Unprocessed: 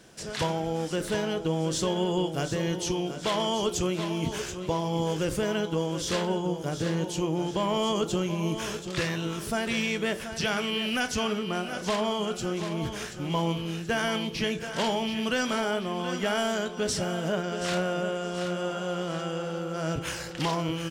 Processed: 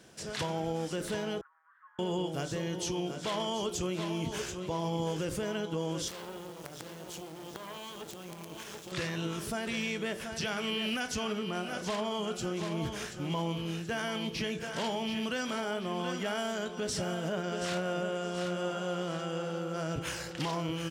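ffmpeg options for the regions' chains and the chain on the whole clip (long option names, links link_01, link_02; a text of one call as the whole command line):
ffmpeg -i in.wav -filter_complex "[0:a]asettb=1/sr,asplit=3[link_01][link_02][link_03];[link_01]atrim=end=1.414[link_04];[link_02]atrim=start=1.41:end=1.99,asetpts=PTS-STARTPTS,afade=type=in:duration=0.004:curve=qsin,afade=type=out:start_time=0.576:duration=0.004:curve=qsin,acompressor=threshold=-34dB:ratio=12:attack=3.2:release=140:knee=1:detection=peak,asuperpass=centerf=1400:order=8:qfactor=1.8[link_05];[link_03]atrim=start=1.986[link_06];[link_04][link_05]acrossfade=duration=0.004:curve1=hsin:curve2=qsin[link_07];[link_07][link_06]acrossfade=duration=0.004:curve1=qsin:curve2=hsin,asettb=1/sr,asplit=3[link_08][link_09][link_10];[link_08]atrim=end=6.084[link_11];[link_09]atrim=start=6.08:end=8.92,asetpts=PTS-STARTPTS,afade=type=in:duration=0.004:curve=qsin,afade=type=out:start_time=2.836:duration=0.004:curve=qsin,acompressor=threshold=-30dB:ratio=5:attack=3.2:release=140:knee=1:detection=peak,acrusher=bits=5:dc=4:mix=0:aa=0.000001,lowshelf=frequency=120:gain=-7[link_12];[link_10]atrim=start=8.916[link_13];[link_11][link_12]acrossfade=duration=0.004:curve1=hsin:curve2=qsin[link_14];[link_14][link_13]acrossfade=duration=0.004:curve1=qsin:curve2=hsin,highpass=44,alimiter=limit=-21dB:level=0:latency=1:release=87,volume=-3dB" out.wav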